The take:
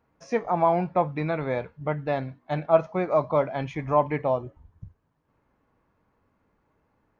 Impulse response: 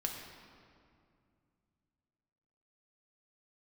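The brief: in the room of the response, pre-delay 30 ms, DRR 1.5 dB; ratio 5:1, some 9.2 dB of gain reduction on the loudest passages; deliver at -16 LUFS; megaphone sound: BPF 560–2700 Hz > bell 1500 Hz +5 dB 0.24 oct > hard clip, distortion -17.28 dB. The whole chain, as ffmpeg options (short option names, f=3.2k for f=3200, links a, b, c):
-filter_complex "[0:a]acompressor=threshold=-23dB:ratio=5,asplit=2[a][b];[1:a]atrim=start_sample=2205,adelay=30[c];[b][c]afir=irnorm=-1:irlink=0,volume=-3dB[d];[a][d]amix=inputs=2:normalize=0,highpass=560,lowpass=2.7k,equalizer=f=1.5k:t=o:w=0.24:g=5,asoftclip=type=hard:threshold=-20.5dB,volume=15dB"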